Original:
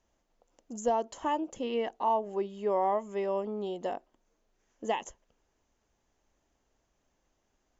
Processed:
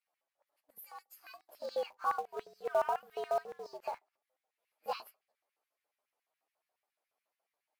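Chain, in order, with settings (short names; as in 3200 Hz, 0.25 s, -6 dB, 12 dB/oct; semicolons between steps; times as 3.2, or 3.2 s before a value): inharmonic rescaling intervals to 118%; LFO high-pass square 7.1 Hz 630–2000 Hz; 0.78–1.49 differentiator; in parallel at -11 dB: companded quantiser 4-bit; on the sum: gain -7.5 dB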